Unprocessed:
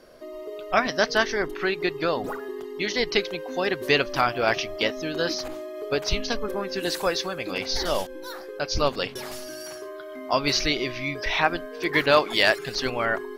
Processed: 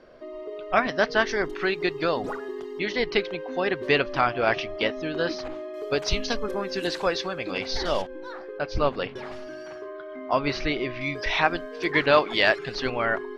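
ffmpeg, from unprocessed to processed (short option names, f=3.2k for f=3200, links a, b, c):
-af "asetnsamples=n=441:p=0,asendcmd='1.27 lowpass f 6900;2.79 lowpass f 3200;5.74 lowpass f 8300;6.87 lowpass f 4400;8.02 lowpass f 2400;11.01 lowpass f 6400;11.92 lowpass f 3700',lowpass=3.2k"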